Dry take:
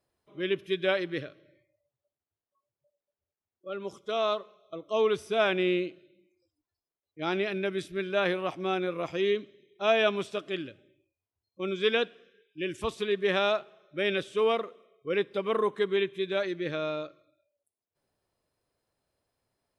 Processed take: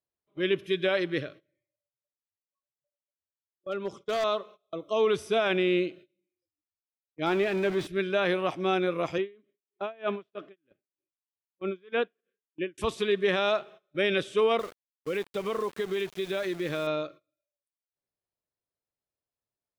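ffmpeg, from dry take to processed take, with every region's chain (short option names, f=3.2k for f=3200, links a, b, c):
-filter_complex "[0:a]asettb=1/sr,asplit=3[a][b][c];[a]atrim=end=3.714[d];[b]atrim=start=3.71:end=4.24,asetpts=PTS-STARTPTS,afade=t=in:d=0.004:c=qsin,afade=t=out:st=0.526:d=0.004:c=qsin,adynamicsmooth=sensitivity=8:basefreq=6.7k,asoftclip=type=hard:threshold=-28dB[e];[c]atrim=start=4.236[f];[d][e]acrossfade=d=0.004:c1=hsin:c2=qsin[g];[g][f]acrossfade=d=0.004:c1=qsin:c2=hsin,asettb=1/sr,asplit=3[h][i][j];[h]atrim=end=7.264[k];[i]atrim=start=7.26:end=7.87,asetpts=PTS-STARTPTS,afade=t=in:d=0.004:c=qsin,afade=t=out:st=0.606:d=0.004:c=qsin,aeval=exprs='val(0)+0.5*0.0224*sgn(val(0))':c=same,lowpass=f=1.7k:p=1,lowshelf=f=340:g=-3.5[l];[j]atrim=start=7.866[m];[k][l]acrossfade=d=0.004:c1=hsin:c2=qsin[n];[n][m]acrossfade=d=0.004:c1=qsin:c2=hsin,asettb=1/sr,asplit=3[o][p][q];[o]atrim=end=9.184[r];[p]atrim=start=9.18:end=12.78,asetpts=PTS-STARTPTS,afade=t=in:d=0.004:c=qsin,afade=t=out:st=3.596:d=0.004:c=qsin,highpass=160,lowpass=2.2k,aeval=exprs='val(0)*pow(10,-32*(0.5-0.5*cos(2*PI*3.2*n/s))/20)':c=same[s];[q]atrim=start=12.776[t];[r][s]acrossfade=d=0.004:c1=hsin:c2=qsin[u];[u][t]acrossfade=d=0.004:c1=qsin:c2=hsin,asettb=1/sr,asplit=3[v][w][x];[v]atrim=end=14.594[y];[w]atrim=start=14.59:end=16.87,asetpts=PTS-STARTPTS,afade=t=in:d=0.004:c=qsin,afade=t=out:st=2.276:d=0.004:c=qsin,acompressor=threshold=-30dB:ratio=6:attack=3.2:release=140:knee=1:detection=peak,aeval=exprs='val(0)*gte(abs(val(0)),0.00596)':c=same[z];[x]atrim=start=16.866[aa];[y][z]acrossfade=d=0.004:c1=hsin:c2=qsin[ab];[ab][aa]acrossfade=d=0.004:c1=qsin:c2=hsin,agate=range=-20dB:threshold=-50dB:ratio=16:detection=peak,alimiter=limit=-20dB:level=0:latency=1:release=26,volume=3.5dB"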